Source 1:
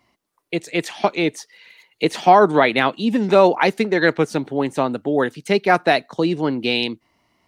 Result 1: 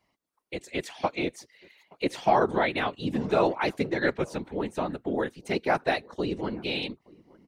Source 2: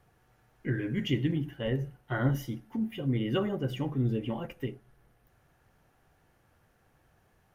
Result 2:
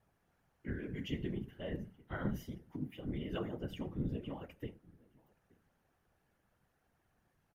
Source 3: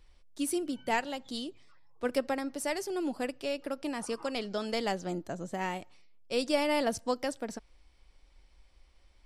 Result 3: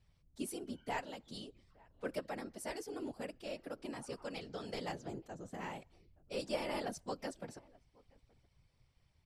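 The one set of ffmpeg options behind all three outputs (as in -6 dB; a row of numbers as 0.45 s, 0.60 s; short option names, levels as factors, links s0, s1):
-filter_complex "[0:a]asplit=2[s0][s1];[s1]adelay=874.6,volume=0.0562,highshelf=f=4000:g=-19.7[s2];[s0][s2]amix=inputs=2:normalize=0,afftfilt=real='hypot(re,im)*cos(2*PI*random(0))':imag='hypot(re,im)*sin(2*PI*random(1))':win_size=512:overlap=0.75,volume=0.631"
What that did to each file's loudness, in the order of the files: -10.0 LU, -10.0 LU, -10.0 LU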